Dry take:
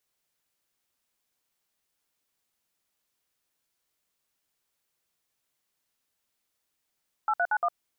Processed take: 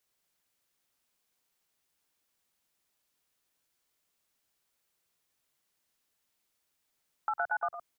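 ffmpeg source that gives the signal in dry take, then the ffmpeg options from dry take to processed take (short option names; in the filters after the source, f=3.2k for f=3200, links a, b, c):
-f lavfi -i "aevalsrc='0.0562*clip(min(mod(t,0.116),0.057-mod(t,0.116))/0.002,0,1)*(eq(floor(t/0.116),0)*(sin(2*PI*852*mod(t,0.116))+sin(2*PI*1336*mod(t,0.116)))+eq(floor(t/0.116),1)*(sin(2*PI*697*mod(t,0.116))+sin(2*PI*1477*mod(t,0.116)))+eq(floor(t/0.116),2)*(sin(2*PI*852*mod(t,0.116))+sin(2*PI*1477*mod(t,0.116)))+eq(floor(t/0.116),3)*(sin(2*PI*697*mod(t,0.116))+sin(2*PI*1209*mod(t,0.116))))':d=0.464:s=44100"
-filter_complex "[0:a]acrossover=split=170[a][b];[b]acompressor=threshold=-31dB:ratio=3[c];[a][c]amix=inputs=2:normalize=0,aecho=1:1:100|112:0.133|0.376"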